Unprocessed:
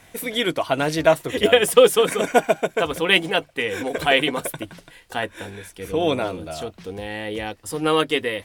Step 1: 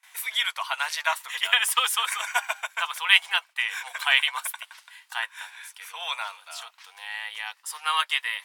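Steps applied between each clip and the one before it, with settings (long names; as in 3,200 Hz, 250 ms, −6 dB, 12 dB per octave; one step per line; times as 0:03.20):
elliptic high-pass filter 930 Hz, stop band 70 dB
noise gate with hold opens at −44 dBFS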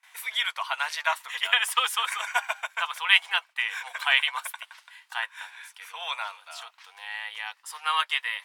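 high-shelf EQ 5,200 Hz −7.5 dB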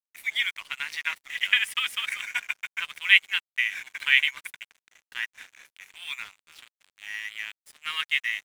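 high-pass with resonance 2,100 Hz, resonance Q 3.2
dead-zone distortion −38.5 dBFS
level −5 dB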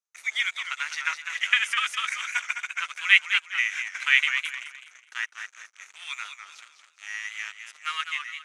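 fade-out on the ending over 0.57 s
loudspeaker in its box 490–9,700 Hz, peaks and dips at 1,300 Hz +9 dB, 3,100 Hz −3 dB, 6,300 Hz +10 dB
feedback echo with a swinging delay time 205 ms, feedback 32%, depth 122 cents, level −8 dB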